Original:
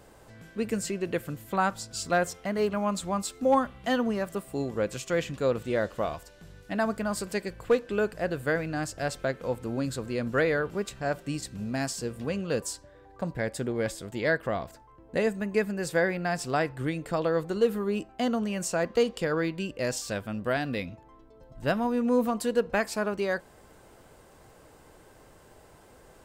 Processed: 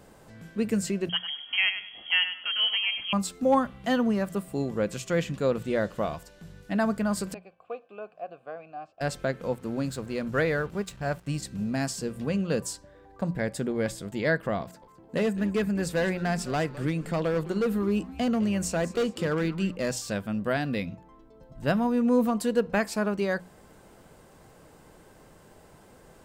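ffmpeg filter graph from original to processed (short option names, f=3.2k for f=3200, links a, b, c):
-filter_complex "[0:a]asettb=1/sr,asplit=3[a][b][c];[a]atrim=end=1.094[d];[b]atrim=start=1.09:end=3.13,asetpts=PTS-STARTPTS,afade=t=in:d=0.004:c=qsin,afade=t=out:st=2.036:d=0.004:c=qsin,aecho=1:1:100|200|300:0.316|0.0822|0.0214,atrim=end_sample=89964,lowpass=f=2.9k:t=q:w=0.5098,lowpass=f=2.9k:t=q:w=0.6013,lowpass=f=2.9k:t=q:w=0.9,lowpass=f=2.9k:t=q:w=2.563,afreqshift=-3400[e];[c]atrim=start=3.126[f];[d][e]acrossfade=d=0.004:c1=hsin:c2=qsin[g];[g][f]acrossfade=d=0.004:c1=qsin:c2=hsin,asettb=1/sr,asplit=3[h][i][j];[h]atrim=end=7.344[k];[i]atrim=start=7.34:end=9.01,asetpts=PTS-STARTPTS,afade=t=in:d=0.004:c=qsin,afade=t=out:st=1.666:d=0.004:c=qsin,acrossover=split=4300[l][m];[m]acompressor=threshold=-56dB:ratio=4:attack=1:release=60[n];[l][n]amix=inputs=2:normalize=0,agate=range=-33dB:threshold=-44dB:ratio=3:release=100:detection=peak,asplit=3[o][p][q];[o]bandpass=f=730:t=q:w=8,volume=0dB[r];[p]bandpass=f=1.09k:t=q:w=8,volume=-6dB[s];[q]bandpass=f=2.44k:t=q:w=8,volume=-9dB[t];[r][s][t]amix=inputs=3:normalize=0[u];[j]atrim=start=9.006[v];[k][u]acrossfade=d=0.004:c1=hsin:c2=qsin[w];[w][v]acrossfade=d=0.004:c1=qsin:c2=hsin,asettb=1/sr,asplit=3[x][y][z];[x]atrim=end=9.534[aa];[y]atrim=start=9.53:end=11.4,asetpts=PTS-STARTPTS,afade=t=in:d=0.004:c=qsin,afade=t=out:st=1.866:d=0.004:c=qsin,highpass=f=76:p=1,asubboost=boost=9:cutoff=100,aeval=exprs='sgn(val(0))*max(abs(val(0))-0.00299,0)':c=same[ab];[z]atrim=start=11.396[ac];[aa][ab]acrossfade=d=0.004:c1=hsin:c2=qsin[ad];[ad][ac]acrossfade=d=0.004:c1=qsin:c2=hsin,asettb=1/sr,asplit=3[ae][af][ag];[ae]atrim=end=14.614[ah];[af]atrim=start=14.61:end=19.93,asetpts=PTS-STARTPTS,afade=t=in:d=0.004:c=qsin,afade=t=out:st=5.316:d=0.004:c=qsin,highpass=92,volume=22.5dB,asoftclip=hard,volume=-22.5dB,asplit=4[ai][aj][ak][al];[aj]adelay=209,afreqshift=-140,volume=-15.5dB[am];[ak]adelay=418,afreqshift=-280,volume=-25.1dB[an];[al]adelay=627,afreqshift=-420,volume=-34.8dB[ao];[ai][am][an][ao]amix=inputs=4:normalize=0,atrim=end_sample=234612[ap];[ag]atrim=start=19.926[aq];[ah][ap]acrossfade=d=0.004:c1=hsin:c2=qsin[ar];[ar][aq]acrossfade=d=0.004:c1=qsin:c2=hsin,equalizer=f=180:t=o:w=0.76:g=7,bandreject=f=60:t=h:w=6,bandreject=f=120:t=h:w=6,bandreject=f=180:t=h:w=6"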